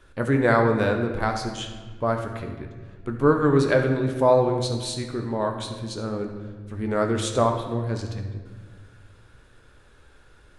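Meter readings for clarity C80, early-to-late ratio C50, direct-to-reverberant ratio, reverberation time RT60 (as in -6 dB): 8.0 dB, 6.5 dB, 3.5 dB, 1.5 s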